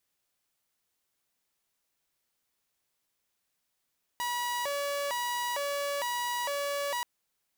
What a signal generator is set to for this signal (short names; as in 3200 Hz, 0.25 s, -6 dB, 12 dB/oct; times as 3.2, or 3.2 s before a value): siren hi-lo 569–968 Hz 1.1/s saw -27.5 dBFS 2.83 s